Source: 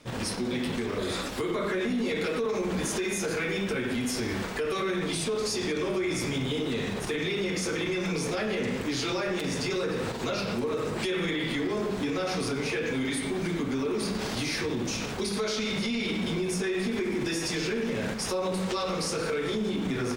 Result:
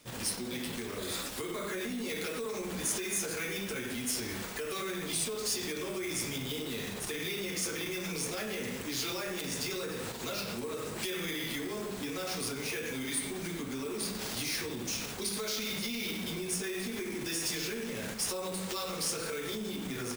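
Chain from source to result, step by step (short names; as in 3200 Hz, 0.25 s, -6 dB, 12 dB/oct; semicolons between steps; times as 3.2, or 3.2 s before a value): in parallel at -9 dB: sample-rate reducer 8300 Hz, jitter 0%; on the sum: pre-emphasis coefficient 0.8; gain +2.5 dB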